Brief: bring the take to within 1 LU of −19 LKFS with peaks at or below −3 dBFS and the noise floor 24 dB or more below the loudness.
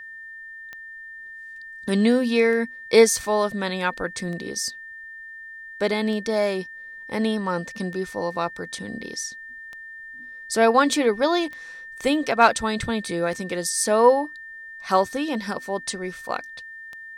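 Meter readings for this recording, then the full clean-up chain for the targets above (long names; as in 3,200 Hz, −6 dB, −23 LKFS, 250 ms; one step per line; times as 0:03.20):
number of clicks 10; interfering tone 1,800 Hz; level of the tone −37 dBFS; integrated loudness −23.0 LKFS; sample peak −4.0 dBFS; target loudness −19.0 LKFS
→ click removal
notch filter 1,800 Hz, Q 30
level +4 dB
brickwall limiter −3 dBFS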